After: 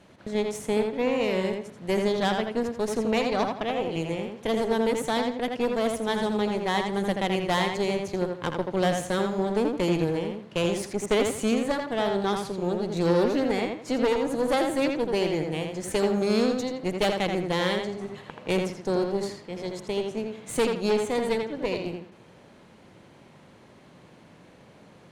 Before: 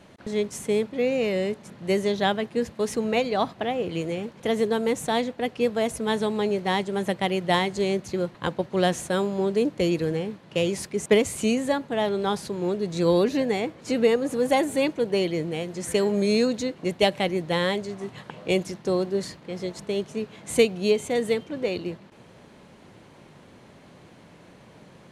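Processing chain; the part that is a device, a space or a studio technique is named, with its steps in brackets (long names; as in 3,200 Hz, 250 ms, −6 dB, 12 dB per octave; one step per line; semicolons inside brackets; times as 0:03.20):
rockabilly slapback (tube saturation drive 20 dB, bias 0.8; tape delay 83 ms, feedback 31%, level −3 dB, low-pass 4,000 Hz)
level +1.5 dB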